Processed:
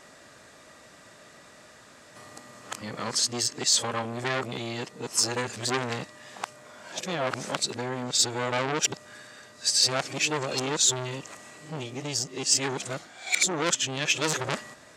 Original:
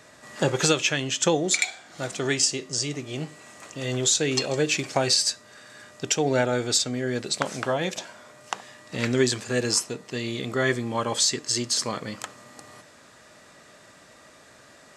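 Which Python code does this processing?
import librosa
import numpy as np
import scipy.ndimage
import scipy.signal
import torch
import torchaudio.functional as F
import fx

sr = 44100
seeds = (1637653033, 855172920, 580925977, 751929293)

y = np.flip(x).copy()
y = fx.transformer_sat(y, sr, knee_hz=3400.0)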